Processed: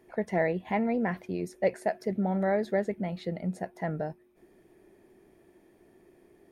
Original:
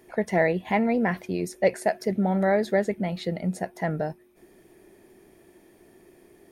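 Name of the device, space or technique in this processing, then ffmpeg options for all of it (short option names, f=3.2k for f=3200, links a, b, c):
behind a face mask: -af "highshelf=f=3k:g=-7.5,volume=-4.5dB"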